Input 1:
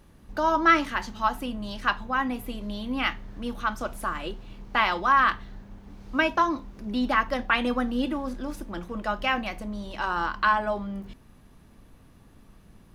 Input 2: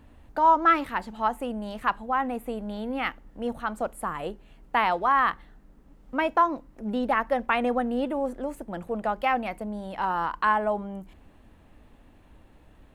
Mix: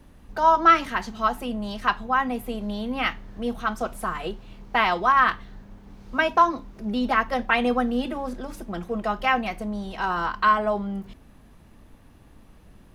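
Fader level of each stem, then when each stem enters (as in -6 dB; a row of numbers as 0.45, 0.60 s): 0.0, -2.0 dB; 0.00, 0.00 s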